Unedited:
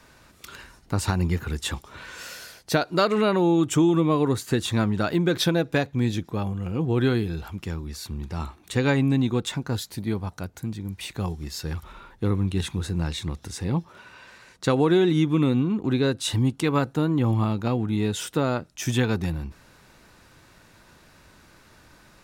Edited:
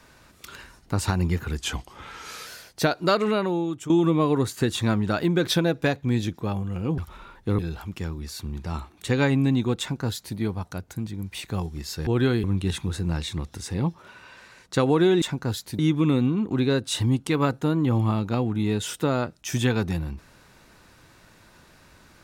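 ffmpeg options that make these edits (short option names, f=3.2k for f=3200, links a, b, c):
-filter_complex "[0:a]asplit=10[a][b][c][d][e][f][g][h][i][j];[a]atrim=end=1.584[k];[b]atrim=start=1.58:end=2.37,asetpts=PTS-STARTPTS,asetrate=39249,aresample=44100[l];[c]atrim=start=2.366:end=3.8,asetpts=PTS-STARTPTS,afade=t=out:st=0.674:d=0.76:silence=0.177828[m];[d]atrim=start=3.8:end=6.882,asetpts=PTS-STARTPTS,afade=t=in:d=0.004:c=hsin:silence=0.177828[n];[e]atrim=start=11.728:end=12.342[o];[f]atrim=start=7.248:end=11.732[p];[g]atrim=start=6.878:end=7.252[q];[h]atrim=start=12.338:end=15.122[r];[i]atrim=start=9.458:end=10.032[s];[j]atrim=start=15.118[t];[k][l]acrossfade=d=0.004:c1=hsin:c2=hsin[u];[m][n]concat=n=2:v=0:a=1[v];[u][v]acrossfade=d=0.004:c1=hsin:c2=hsin[w];[w][o]acrossfade=d=0.004:c1=hsin:c2=hsin[x];[x][p]acrossfade=d=0.004:c1=hsin:c2=hsin[y];[y][q]acrossfade=d=0.004:c1=hsin:c2=hsin[z];[z][r]acrossfade=d=0.004:c1=hsin:c2=hsin[aa];[aa][s]acrossfade=d=0.004:c1=hsin:c2=hsin[ab];[ab][t]acrossfade=d=0.004:c1=hsin:c2=hsin"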